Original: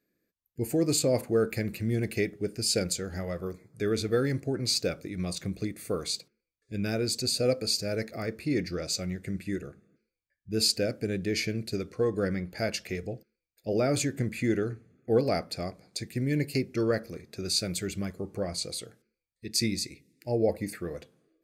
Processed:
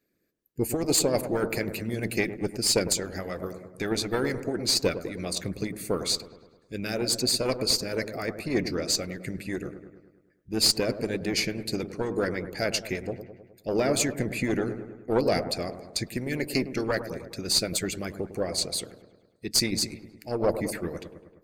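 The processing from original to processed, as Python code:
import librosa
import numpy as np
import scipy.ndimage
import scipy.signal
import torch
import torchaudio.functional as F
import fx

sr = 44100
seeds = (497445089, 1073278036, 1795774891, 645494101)

y = fx.diode_clip(x, sr, knee_db=-22.5)
y = fx.echo_wet_lowpass(y, sr, ms=104, feedback_pct=58, hz=1400.0, wet_db=-8)
y = fx.hpss(y, sr, part='harmonic', gain_db=-13)
y = y * 10.0 ** (7.0 / 20.0)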